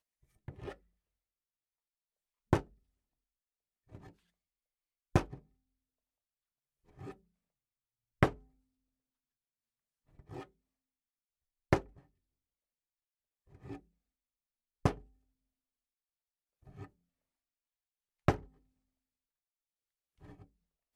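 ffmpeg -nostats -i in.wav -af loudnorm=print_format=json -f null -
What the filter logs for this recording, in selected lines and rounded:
"input_i" : "-35.1",
"input_tp" : "-7.4",
"input_lra" : "3.0",
"input_thresh" : "-49.4",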